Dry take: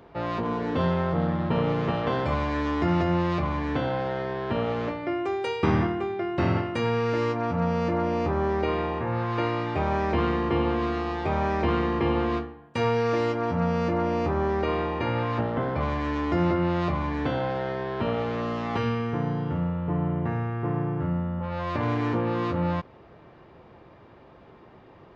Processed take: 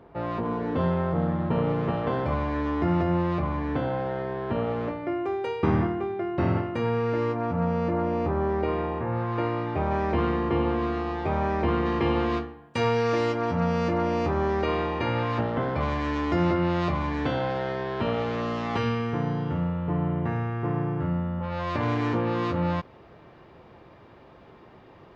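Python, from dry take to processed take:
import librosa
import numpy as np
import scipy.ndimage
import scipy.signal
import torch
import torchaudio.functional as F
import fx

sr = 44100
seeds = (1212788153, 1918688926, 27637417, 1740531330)

y = fx.high_shelf(x, sr, hz=2600.0, db=fx.steps((0.0, -11.5), (9.9, -6.5), (11.85, 3.5)))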